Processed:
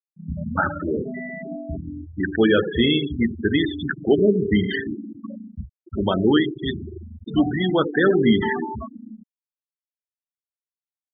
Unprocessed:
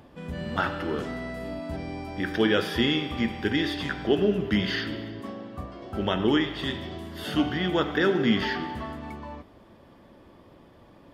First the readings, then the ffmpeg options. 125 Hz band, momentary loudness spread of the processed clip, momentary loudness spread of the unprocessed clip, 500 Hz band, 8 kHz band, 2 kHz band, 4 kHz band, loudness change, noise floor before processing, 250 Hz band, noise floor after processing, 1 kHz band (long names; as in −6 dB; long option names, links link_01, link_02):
+5.0 dB, 18 LU, 14 LU, +6.0 dB, can't be measured, +3.0 dB, +1.5 dB, +5.5 dB, −54 dBFS, +5.5 dB, below −85 dBFS, +2.5 dB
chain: -af "acontrast=53,aecho=1:1:86|172|258|344|430|516:0.211|0.12|0.0687|0.0391|0.0223|0.0127,afftfilt=real='re*gte(hypot(re,im),0.2)':imag='im*gte(hypot(re,im),0.2)':win_size=1024:overlap=0.75"